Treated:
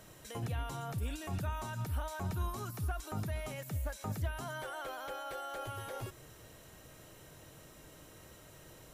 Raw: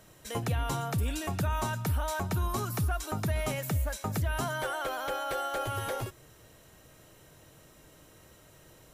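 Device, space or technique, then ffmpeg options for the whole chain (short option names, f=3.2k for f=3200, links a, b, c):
de-esser from a sidechain: -filter_complex "[0:a]asplit=2[a][b];[b]highpass=f=4.1k:p=1,apad=whole_len=394171[c];[a][c]sidechaincompress=threshold=-49dB:ratio=4:attack=0.56:release=76,volume=1dB"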